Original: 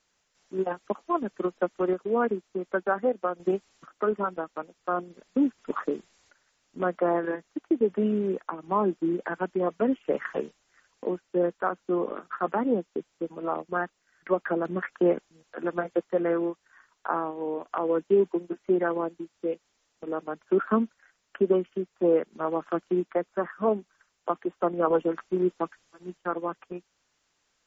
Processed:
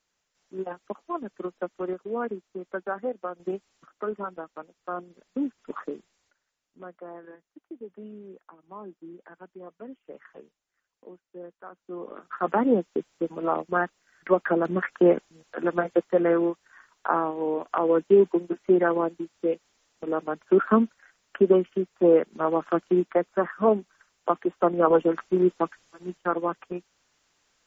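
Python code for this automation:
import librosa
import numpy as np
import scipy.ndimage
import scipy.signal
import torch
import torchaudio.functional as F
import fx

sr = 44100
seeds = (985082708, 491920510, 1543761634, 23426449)

y = fx.gain(x, sr, db=fx.line((5.87, -5.0), (7.0, -17.0), (11.63, -17.0), (12.08, -8.0), (12.54, 4.0)))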